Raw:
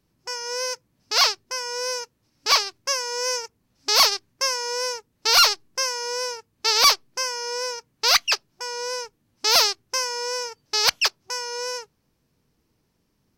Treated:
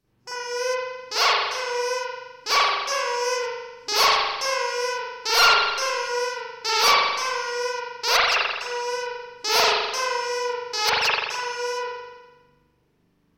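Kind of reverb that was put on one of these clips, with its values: spring tank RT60 1.2 s, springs 41 ms, chirp 55 ms, DRR -9 dB; trim -5.5 dB

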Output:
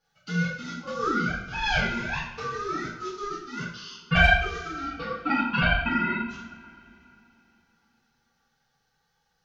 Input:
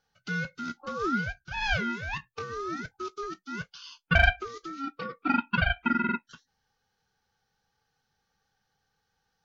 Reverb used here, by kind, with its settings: two-slope reverb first 0.6 s, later 3.2 s, from -22 dB, DRR -9.5 dB; trim -5.5 dB

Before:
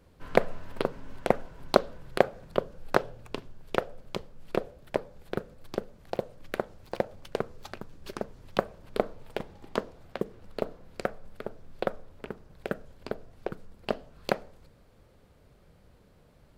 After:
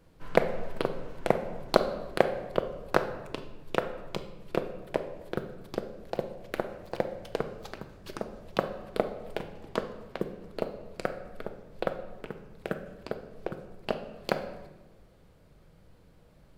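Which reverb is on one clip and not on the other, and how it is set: simulated room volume 710 m³, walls mixed, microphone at 0.64 m; trim -1 dB

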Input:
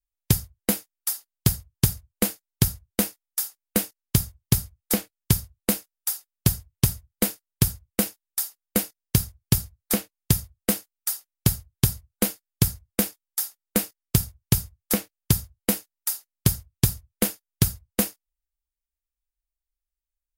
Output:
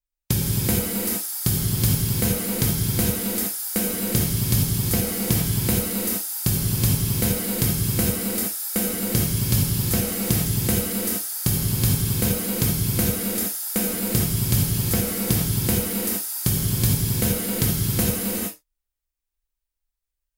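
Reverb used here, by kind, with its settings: gated-style reverb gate 490 ms flat, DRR -6.5 dB; trim -3.5 dB

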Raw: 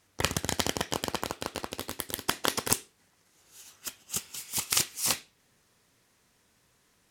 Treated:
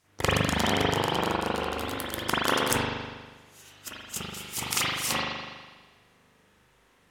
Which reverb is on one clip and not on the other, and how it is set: spring tank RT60 1.4 s, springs 40 ms, chirp 65 ms, DRR -9.5 dB; trim -3 dB

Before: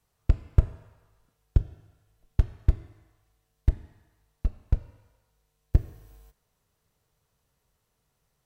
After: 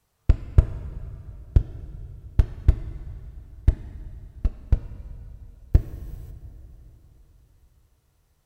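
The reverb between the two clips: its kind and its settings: plate-style reverb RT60 4.3 s, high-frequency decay 0.8×, DRR 11.5 dB; trim +3.5 dB

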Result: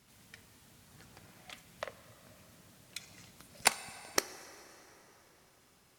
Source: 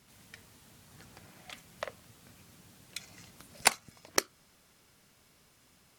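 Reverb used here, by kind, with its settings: plate-style reverb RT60 4.3 s, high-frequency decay 0.65×, DRR 13.5 dB; trim -2.5 dB

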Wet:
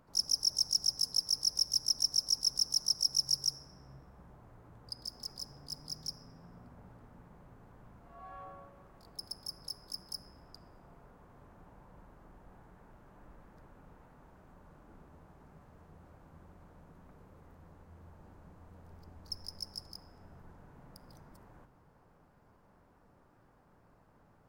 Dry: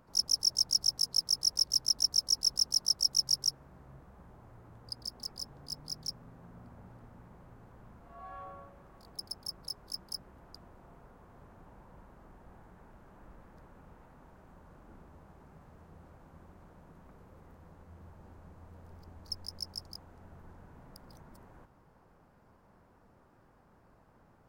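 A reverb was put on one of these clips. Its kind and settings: simulated room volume 1500 m³, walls mixed, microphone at 0.37 m; trim -2 dB

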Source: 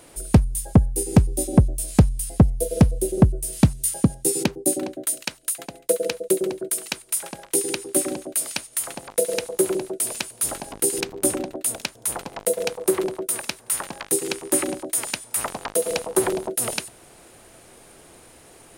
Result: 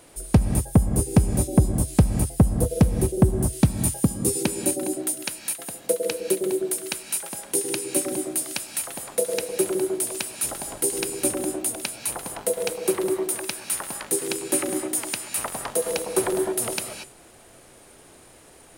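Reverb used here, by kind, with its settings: gated-style reverb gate 260 ms rising, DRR 6 dB; trim -2.5 dB

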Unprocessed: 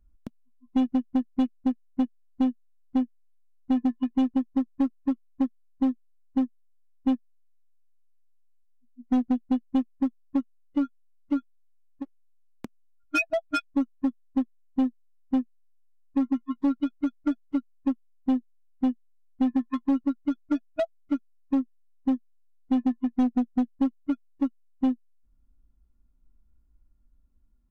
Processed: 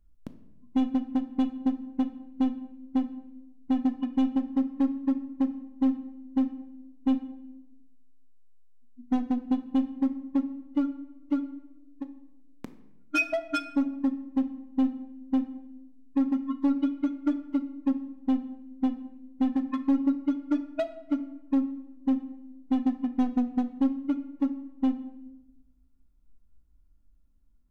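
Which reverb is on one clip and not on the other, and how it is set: simulated room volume 370 m³, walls mixed, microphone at 0.39 m; trim -1.5 dB

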